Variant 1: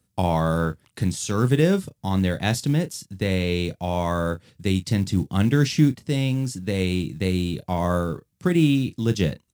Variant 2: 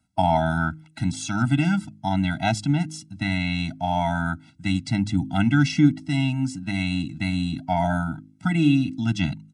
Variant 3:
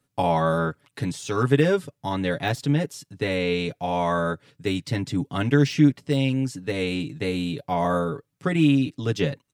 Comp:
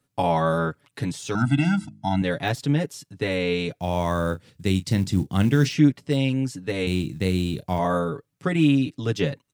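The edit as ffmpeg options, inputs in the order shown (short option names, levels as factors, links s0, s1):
-filter_complex "[0:a]asplit=2[s0][s1];[2:a]asplit=4[s2][s3][s4][s5];[s2]atrim=end=1.352[s6];[1:a]atrim=start=1.348:end=2.222[s7];[s3]atrim=start=2.218:end=3.802[s8];[s0]atrim=start=3.798:end=5.692[s9];[s4]atrim=start=5.688:end=6.872[s10];[s1]atrim=start=6.868:end=7.792[s11];[s5]atrim=start=7.788[s12];[s6][s7]acrossfade=d=0.004:c1=hsin:c2=hsin[s13];[s13][s8]acrossfade=d=0.004:c1=hsin:c2=hsin[s14];[s14][s9]acrossfade=d=0.004:c1=hsin:c2=hsin[s15];[s15][s10]acrossfade=d=0.004:c1=hsin:c2=hsin[s16];[s16][s11]acrossfade=d=0.004:c1=hsin:c2=hsin[s17];[s17][s12]acrossfade=d=0.004:c1=hsin:c2=hsin"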